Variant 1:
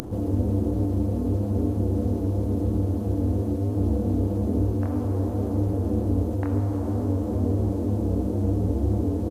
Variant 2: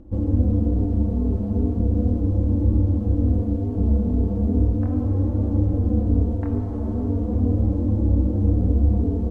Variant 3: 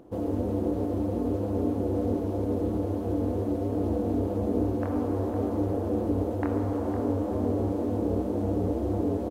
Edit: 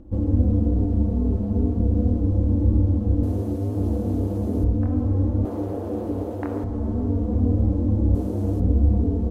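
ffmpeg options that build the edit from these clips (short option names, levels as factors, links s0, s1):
-filter_complex "[0:a]asplit=2[s0][s1];[1:a]asplit=4[s2][s3][s4][s5];[s2]atrim=end=3.232[s6];[s0]atrim=start=3.228:end=4.642[s7];[s3]atrim=start=4.638:end=5.452[s8];[2:a]atrim=start=5.448:end=6.642[s9];[s4]atrim=start=6.638:end=8.152[s10];[s1]atrim=start=8.148:end=8.602[s11];[s5]atrim=start=8.598[s12];[s6][s7]acrossfade=d=0.004:c1=hsin:c2=hsin[s13];[s13][s8]acrossfade=d=0.004:c1=hsin:c2=hsin[s14];[s14][s9]acrossfade=d=0.004:c1=hsin:c2=hsin[s15];[s15][s10]acrossfade=d=0.004:c1=hsin:c2=hsin[s16];[s16][s11]acrossfade=d=0.004:c1=hsin:c2=hsin[s17];[s17][s12]acrossfade=d=0.004:c1=hsin:c2=hsin"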